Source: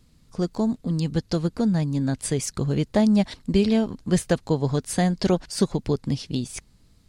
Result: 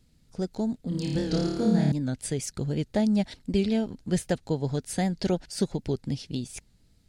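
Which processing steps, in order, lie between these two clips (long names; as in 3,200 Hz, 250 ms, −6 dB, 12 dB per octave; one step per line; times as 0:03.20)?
parametric band 1,100 Hz −13.5 dB 0.22 octaves
0:00.89–0:01.92: flutter between parallel walls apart 4.7 metres, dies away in 1.1 s
wow of a warped record 78 rpm, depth 100 cents
level −5 dB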